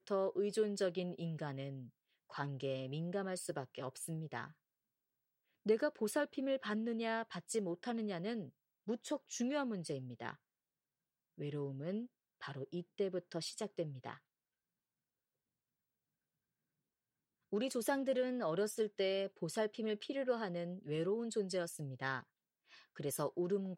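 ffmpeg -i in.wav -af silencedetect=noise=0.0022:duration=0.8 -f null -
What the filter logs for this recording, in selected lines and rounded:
silence_start: 4.51
silence_end: 5.66 | silence_duration: 1.15
silence_start: 10.35
silence_end: 11.38 | silence_duration: 1.03
silence_start: 14.17
silence_end: 17.52 | silence_duration: 3.35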